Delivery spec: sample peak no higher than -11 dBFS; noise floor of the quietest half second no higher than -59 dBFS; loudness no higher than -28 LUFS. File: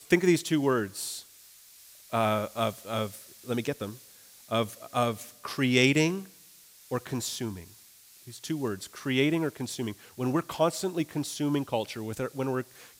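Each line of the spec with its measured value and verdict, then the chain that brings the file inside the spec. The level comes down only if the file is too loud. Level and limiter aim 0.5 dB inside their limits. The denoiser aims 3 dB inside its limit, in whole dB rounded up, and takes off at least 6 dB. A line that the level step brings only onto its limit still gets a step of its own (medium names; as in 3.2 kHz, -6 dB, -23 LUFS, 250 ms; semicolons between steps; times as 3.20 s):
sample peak -6.5 dBFS: fail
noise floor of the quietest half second -55 dBFS: fail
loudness -29.5 LUFS: pass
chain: noise reduction 7 dB, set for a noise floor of -55 dBFS; peak limiter -11.5 dBFS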